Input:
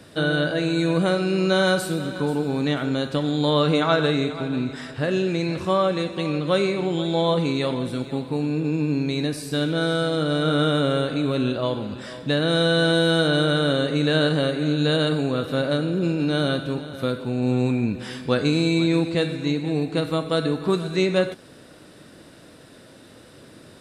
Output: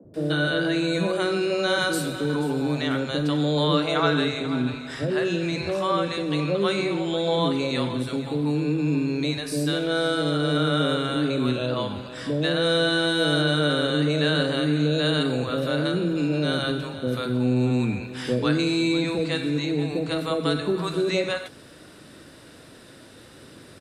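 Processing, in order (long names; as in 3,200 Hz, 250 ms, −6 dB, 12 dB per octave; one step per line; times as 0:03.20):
in parallel at −3 dB: brickwall limiter −17 dBFS, peak gain reduction 10 dB
on the sum: three-band delay without the direct sound mids, lows, highs 40/140 ms, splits 180/600 Hz
level −3 dB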